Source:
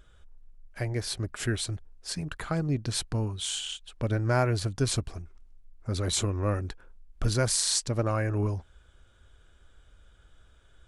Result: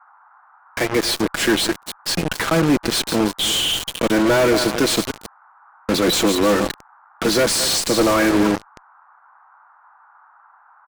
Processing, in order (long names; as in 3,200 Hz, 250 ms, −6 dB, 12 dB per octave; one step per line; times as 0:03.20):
feedback delay that plays each chunk backwards 160 ms, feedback 40%, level −12 dB
Butterworth high-pass 200 Hz 36 dB per octave
parametric band 2,800 Hz +8 dB 1.8 octaves
comb filter 6.1 ms, depth 43%
fuzz pedal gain 44 dB, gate −35 dBFS
noise in a band 810–1,500 Hz −50 dBFS
tilt shelving filter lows +4 dB, about 1,100 Hz
level −1 dB